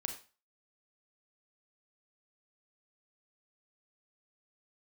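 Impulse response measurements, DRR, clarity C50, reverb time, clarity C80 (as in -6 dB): 4.5 dB, 8.5 dB, 0.35 s, 13.5 dB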